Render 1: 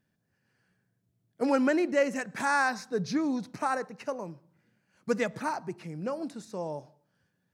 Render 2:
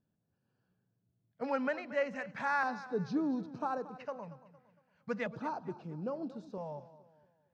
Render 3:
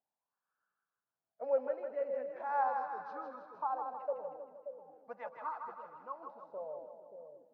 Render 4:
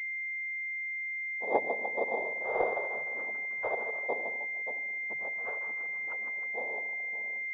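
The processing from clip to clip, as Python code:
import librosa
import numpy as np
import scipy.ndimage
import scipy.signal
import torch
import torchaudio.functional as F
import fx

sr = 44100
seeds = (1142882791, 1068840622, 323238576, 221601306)

y1 = fx.filter_lfo_notch(x, sr, shape='square', hz=0.38, low_hz=340.0, high_hz=2000.0, q=0.95)
y1 = fx.air_absorb(y1, sr, metres=230.0)
y1 = fx.echo_warbled(y1, sr, ms=230, feedback_pct=39, rate_hz=2.8, cents=51, wet_db=-16.0)
y1 = y1 * 10.0 ** (-3.5 / 20.0)
y2 = fx.low_shelf(y1, sr, hz=300.0, db=-8.5)
y2 = fx.wah_lfo(y2, sr, hz=0.39, low_hz=440.0, high_hz=1300.0, q=6.3)
y2 = fx.echo_split(y2, sr, split_hz=550.0, low_ms=579, high_ms=158, feedback_pct=52, wet_db=-5.5)
y2 = y2 * 10.0 ** (8.0 / 20.0)
y3 = fx.noise_vocoder(y2, sr, seeds[0], bands=6)
y3 = fx.dynamic_eq(y3, sr, hz=490.0, q=1.0, threshold_db=-45.0, ratio=4.0, max_db=5)
y3 = fx.pwm(y3, sr, carrier_hz=2100.0)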